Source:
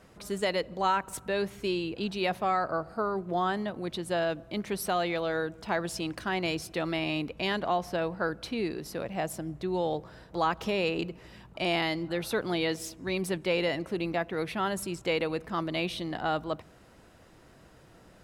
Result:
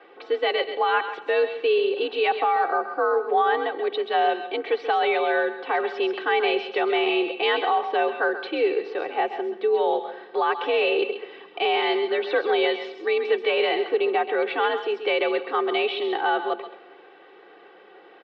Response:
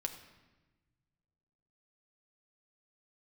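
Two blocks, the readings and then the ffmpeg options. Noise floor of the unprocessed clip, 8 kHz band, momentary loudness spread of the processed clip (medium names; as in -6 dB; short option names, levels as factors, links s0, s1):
-56 dBFS, under -25 dB, 5 LU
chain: -filter_complex "[0:a]aecho=1:1:2.7:0.85,alimiter=limit=0.112:level=0:latency=1:release=38,asplit=2[s0][s1];[1:a]atrim=start_sample=2205,highshelf=f=4900:g=11.5,adelay=132[s2];[s1][s2]afir=irnorm=-1:irlink=0,volume=0.282[s3];[s0][s3]amix=inputs=2:normalize=0,highpass=f=220:t=q:w=0.5412,highpass=f=220:t=q:w=1.307,lowpass=f=3500:t=q:w=0.5176,lowpass=f=3500:t=q:w=0.7071,lowpass=f=3500:t=q:w=1.932,afreqshift=62,volume=2"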